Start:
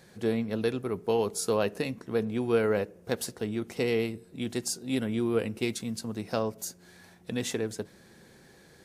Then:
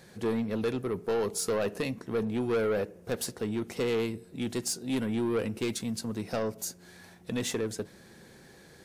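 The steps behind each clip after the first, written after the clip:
soft clipping −25.5 dBFS, distortion −11 dB
level +2 dB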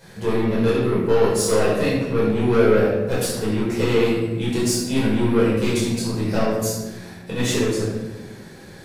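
rectangular room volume 590 cubic metres, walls mixed, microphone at 4.9 metres

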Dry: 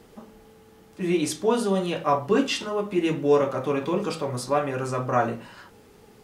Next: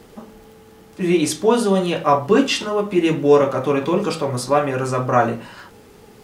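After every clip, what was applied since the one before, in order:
surface crackle 41 per second −48 dBFS
level +6.5 dB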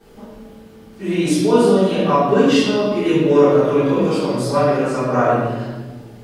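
convolution reverb RT60 1.3 s, pre-delay 4 ms, DRR −15 dB
level −17 dB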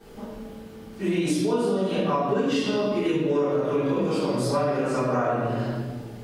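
downward compressor, threshold −21 dBFS, peak gain reduction 13 dB

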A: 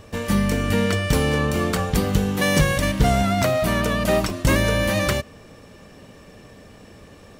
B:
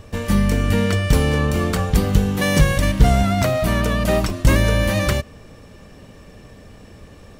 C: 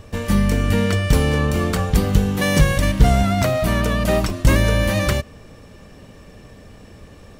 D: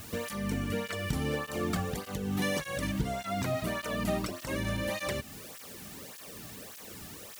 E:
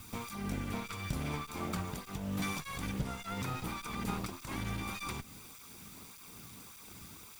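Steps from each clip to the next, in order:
low-shelf EQ 94 Hz +10 dB
no processing that can be heard
background noise white −42 dBFS; downward compressor 3 to 1, threshold −23 dBFS, peak gain reduction 12.5 dB; through-zero flanger with one copy inverted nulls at 1.7 Hz, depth 2.2 ms; level −2.5 dB
lower of the sound and its delayed copy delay 0.85 ms; level −4 dB

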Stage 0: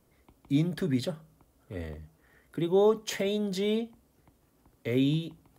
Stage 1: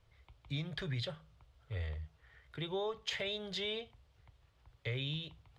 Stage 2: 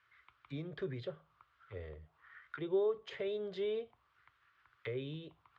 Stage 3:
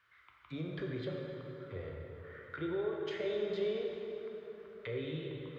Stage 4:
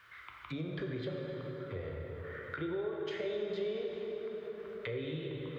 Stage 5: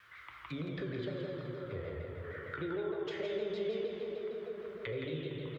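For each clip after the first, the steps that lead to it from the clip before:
drawn EQ curve 110 Hz 0 dB, 240 Hz −26 dB, 460 Hz −12 dB, 3,500 Hz 0 dB, 13,000 Hz −27 dB; downward compressor, threshold −38 dBFS, peak gain reduction 7 dB; level +4 dB
envelope filter 480–1,600 Hz, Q 2.7, down, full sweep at −38 dBFS; flat-topped bell 650 Hz −9.5 dB 1.2 octaves; level +12.5 dB
brickwall limiter −32 dBFS, peak gain reduction 7.5 dB; dense smooth reverb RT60 3.9 s, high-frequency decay 0.6×, DRR −1 dB; level +1 dB
downward compressor 2 to 1, threshold −57 dBFS, peak gain reduction 14.5 dB; level +12 dB
single-tap delay 168 ms −6.5 dB; pitch modulation by a square or saw wave saw down 6.5 Hz, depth 100 cents; level −1 dB

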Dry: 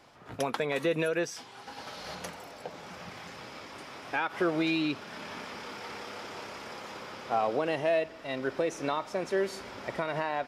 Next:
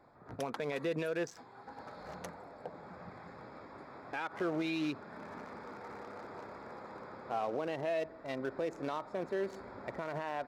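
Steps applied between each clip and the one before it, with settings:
adaptive Wiener filter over 15 samples
brickwall limiter −24 dBFS, peak gain reduction 5.5 dB
level −3 dB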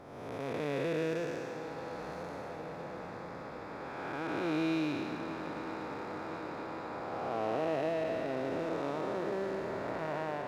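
spectrum smeared in time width 536 ms
feedback echo with a long and a short gap by turns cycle 1,018 ms, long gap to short 1.5 to 1, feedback 71%, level −13 dB
level +6.5 dB

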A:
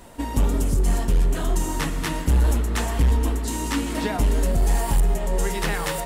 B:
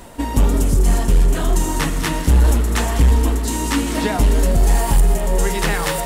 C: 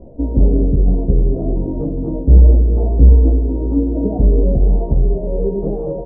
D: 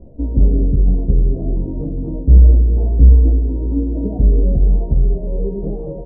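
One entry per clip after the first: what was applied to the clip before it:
reversed playback; upward compression, threshold −31 dBFS; reversed playback; delay with a high-pass on its return 201 ms, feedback 49%, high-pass 4,300 Hz, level −8 dB; level +5.5 dB
Butterworth low-pass 610 Hz 36 dB per octave; double-tracking delay 15 ms −2.5 dB; level +1.5 dB
low-shelf EQ 310 Hz +9.5 dB; level −9 dB

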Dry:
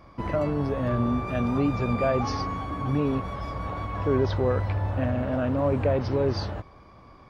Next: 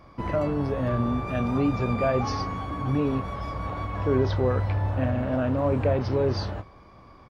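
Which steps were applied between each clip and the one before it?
double-tracking delay 31 ms −13 dB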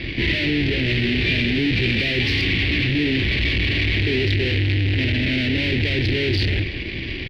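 fuzz pedal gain 47 dB, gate −54 dBFS
drawn EQ curve 100 Hz 0 dB, 210 Hz −4 dB, 360 Hz +3 dB, 510 Hz −12 dB, 1,200 Hz −29 dB, 1,900 Hz +5 dB, 2,700 Hz +8 dB, 4,500 Hz +1 dB, 6,900 Hz −24 dB
level −5 dB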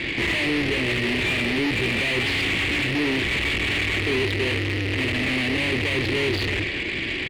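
mid-hump overdrive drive 21 dB, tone 2,100 Hz, clips at −8 dBFS
level −5.5 dB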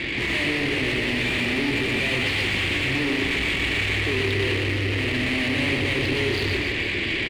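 brickwall limiter −20 dBFS, peak gain reduction 4 dB
on a send: reverse bouncing-ball delay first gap 120 ms, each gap 1.25×, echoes 5

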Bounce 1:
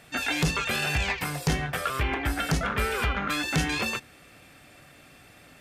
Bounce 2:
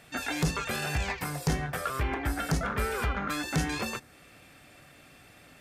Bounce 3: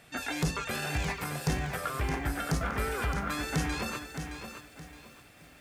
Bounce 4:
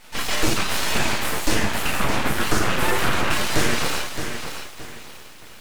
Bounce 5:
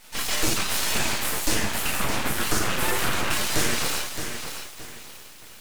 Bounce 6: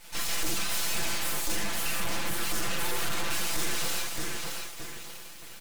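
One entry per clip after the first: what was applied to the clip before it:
dynamic equaliser 2,900 Hz, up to −7 dB, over −45 dBFS, Q 1.3; level −2 dB
feedback echo at a low word length 618 ms, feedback 35%, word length 9 bits, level −8 dB; level −2 dB
coupled-rooms reverb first 0.61 s, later 1.8 s, DRR −6 dB; full-wave rectification; level +6.5 dB
high-shelf EQ 4,600 Hz +9 dB; level −5 dB
soft clipping −23.5 dBFS, distortion −10 dB; comb filter 5.9 ms; level −2 dB

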